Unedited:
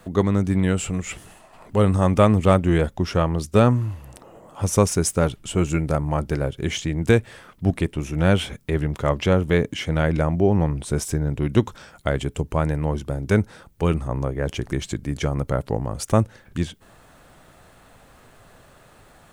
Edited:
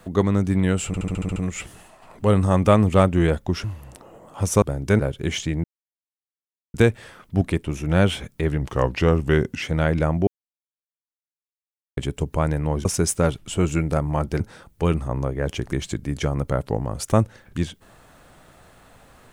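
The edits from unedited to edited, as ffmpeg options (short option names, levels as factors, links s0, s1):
-filter_complex "[0:a]asplit=18[s0][s1][s2][s3][s4][s5][s6][s7][s8][s9][s10][s11][s12][s13][s14][s15][s16][s17];[s0]atrim=end=0.942[s18];[s1]atrim=start=0.868:end=0.942[s19];[s2]atrim=start=0.868:end=0.942[s20];[s3]atrim=start=0.868:end=0.942[s21];[s4]atrim=start=0.868:end=0.942[s22];[s5]atrim=start=0.868:end=0.942[s23];[s6]atrim=start=0.868:end=0.942[s24];[s7]atrim=start=0.868:end=3.152[s25];[s8]atrim=start=3.848:end=4.832[s26];[s9]atrim=start=13.028:end=13.402[s27];[s10]atrim=start=6.378:end=7.03,asetpts=PTS-STARTPTS,afade=t=out:st=0.648:d=0.004:c=hsin,apad=pad_dur=1.1[s28];[s11]atrim=start=7.03:end=8.904,asetpts=PTS-STARTPTS,afade=t=in:d=0.004:c=hsin[s29];[s12]atrim=start=8.9:end=9.8,asetpts=PTS-STARTPTS,asetrate=39249,aresample=44100[s30];[s13]atrim=start=9.796:end=10.45,asetpts=PTS-STARTPTS,afade=t=out:st=0.65:d=0.004:c=hsin[s31];[s14]atrim=start=10.45:end=12.15,asetpts=PTS-STARTPTS,volume=0[s32];[s15]atrim=start=12.15:end=13.032,asetpts=PTS-STARTPTS,afade=t=in:d=0.004:c=hsin[s33];[s16]atrim=start=4.828:end=6.382[s34];[s17]atrim=start=13.398[s35];[s18][s19]acrossfade=d=0.004:c1=hsin:c2=hsin[s36];[s36][s20]acrossfade=d=0.004:c1=hsin:c2=hsin[s37];[s37][s21]acrossfade=d=0.004:c1=hsin:c2=hsin[s38];[s38][s22]acrossfade=d=0.004:c1=hsin:c2=hsin[s39];[s39][s23]acrossfade=d=0.004:c1=hsin:c2=hsin[s40];[s40][s24]acrossfade=d=0.004:c1=hsin:c2=hsin[s41];[s41][s25]acrossfade=d=0.004:c1=hsin:c2=hsin[s42];[s42][s26]acrossfade=d=0.004:c1=hsin:c2=hsin[s43];[s43][s27]acrossfade=d=0.004:c1=hsin:c2=hsin[s44];[s28][s29]concat=n=2:v=0:a=1[s45];[s44][s45]acrossfade=d=0.004:c1=hsin:c2=hsin[s46];[s46][s30]acrossfade=d=0.004:c1=hsin:c2=hsin[s47];[s31][s32][s33]concat=n=3:v=0:a=1[s48];[s47][s48]acrossfade=d=0.004:c1=hsin:c2=hsin[s49];[s49][s34]acrossfade=d=0.004:c1=hsin:c2=hsin[s50];[s50][s35]acrossfade=d=0.004:c1=hsin:c2=hsin"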